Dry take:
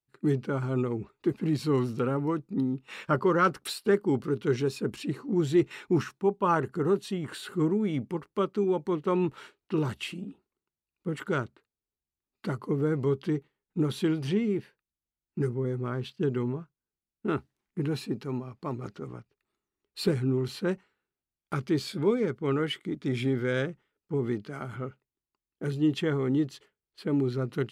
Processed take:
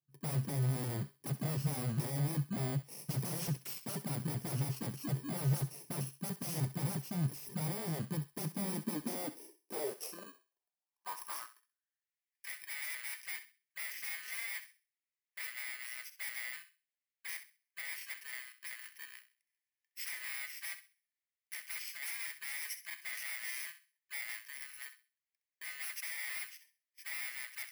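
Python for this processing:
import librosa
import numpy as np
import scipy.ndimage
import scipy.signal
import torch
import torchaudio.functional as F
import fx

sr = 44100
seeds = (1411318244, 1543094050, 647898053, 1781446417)

p1 = fx.bit_reversed(x, sr, seeds[0], block=32)
p2 = fx.low_shelf(p1, sr, hz=140.0, db=7.0)
p3 = 10.0 ** (-29.0 / 20.0) * (np.abs((p2 / 10.0 ** (-29.0 / 20.0) + 3.0) % 4.0 - 2.0) - 1.0)
p4 = fx.filter_sweep_highpass(p3, sr, from_hz=140.0, to_hz=2000.0, start_s=8.27, end_s=12.19, q=5.2)
p5 = p4 + fx.echo_thinned(p4, sr, ms=65, feedback_pct=29, hz=1100.0, wet_db=-11, dry=0)
y = F.gain(torch.from_numpy(p5), -7.0).numpy()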